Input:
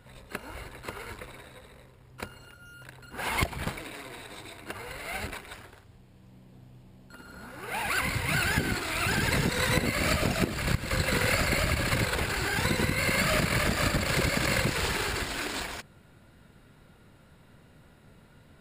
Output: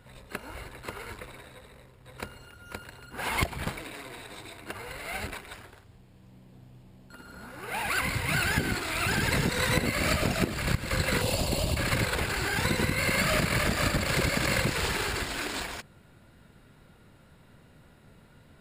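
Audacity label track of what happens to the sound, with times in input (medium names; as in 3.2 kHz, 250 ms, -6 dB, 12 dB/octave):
1.530000	2.530000	echo throw 520 ms, feedback 30%, level -2 dB
11.210000	11.770000	high-order bell 1.7 kHz -15.5 dB 1.1 oct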